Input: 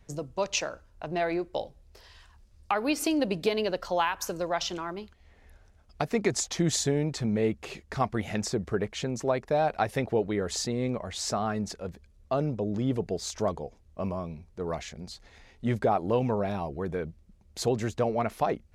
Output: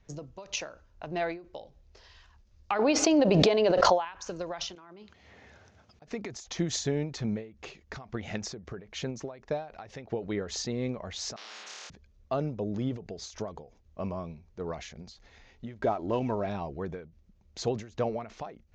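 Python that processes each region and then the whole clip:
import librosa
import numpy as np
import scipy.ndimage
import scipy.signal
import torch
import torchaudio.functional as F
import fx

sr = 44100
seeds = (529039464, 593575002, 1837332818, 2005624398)

y = fx.chain(x, sr, fx.highpass(hz=64.0, slope=12),
    fx.peak_eq(hz=680.0, db=9.5, octaves=1.6),
    fx.pre_swell(db_per_s=22.0), at=(2.79, 4.05))
y = fx.chain(y, sr, fx.highpass(hz=97.0, slope=24),
    fx.over_compress(threshold_db=-47.0, ratio=-1.0), at=(4.75, 6.02))
y = fx.chain(y, sr, fx.ladder_highpass(hz=1200.0, resonance_pct=40),
    fx.room_flutter(wall_m=4.5, rt60_s=1.3),
    fx.spectral_comp(ratio=10.0), at=(11.36, 11.9))
y = fx.chain(y, sr, fx.median_filter(points=9),
    fx.comb(ms=3.1, depth=0.37), at=(15.74, 16.46))
y = scipy.signal.sosfilt(scipy.signal.ellip(4, 1.0, 50, 6600.0, 'lowpass', fs=sr, output='sos'), y)
y = fx.end_taper(y, sr, db_per_s=130.0)
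y = y * 10.0 ** (-1.5 / 20.0)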